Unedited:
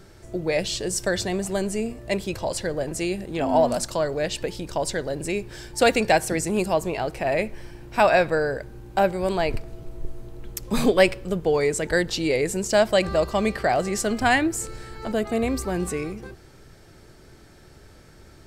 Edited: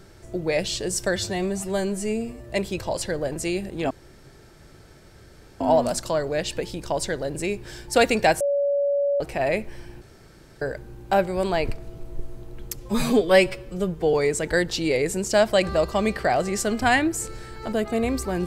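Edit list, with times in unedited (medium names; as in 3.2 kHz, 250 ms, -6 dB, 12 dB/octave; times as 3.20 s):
1.16–2.05 s: stretch 1.5×
3.46 s: insert room tone 1.70 s
6.26–7.06 s: bleep 567 Hz -19 dBFS
7.87–8.47 s: room tone
10.61–11.53 s: stretch 1.5×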